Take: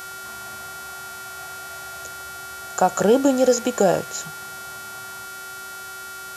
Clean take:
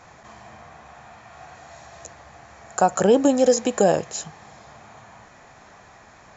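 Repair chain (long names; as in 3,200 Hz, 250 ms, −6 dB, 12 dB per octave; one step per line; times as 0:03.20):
hum removal 379.3 Hz, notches 37
notch filter 1,400 Hz, Q 30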